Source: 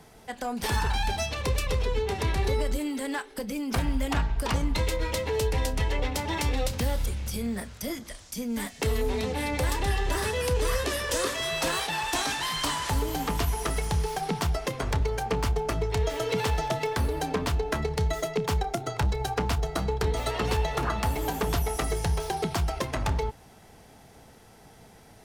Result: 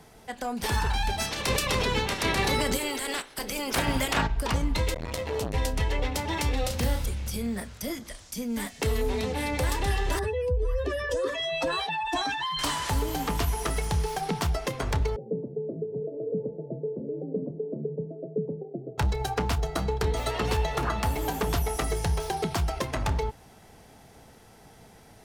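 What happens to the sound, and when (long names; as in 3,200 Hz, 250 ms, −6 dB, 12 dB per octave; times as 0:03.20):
0:01.19–0:04.26: ceiling on every frequency bin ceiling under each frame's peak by 20 dB
0:04.94–0:05.54: saturating transformer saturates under 490 Hz
0:06.60–0:07.05: double-tracking delay 38 ms −5 dB
0:10.19–0:12.59: expanding power law on the bin magnitudes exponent 2
0:15.16–0:18.98: Chebyshev band-pass filter 140–560 Hz, order 4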